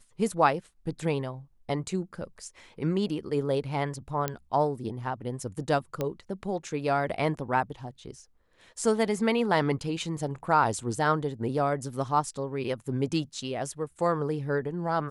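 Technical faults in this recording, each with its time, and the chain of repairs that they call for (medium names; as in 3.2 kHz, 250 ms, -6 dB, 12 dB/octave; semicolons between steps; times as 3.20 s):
4.28 s: pop -13 dBFS
6.01 s: pop -16 dBFS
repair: de-click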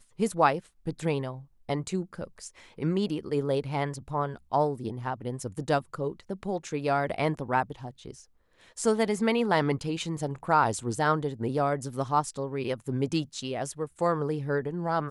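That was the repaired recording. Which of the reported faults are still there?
nothing left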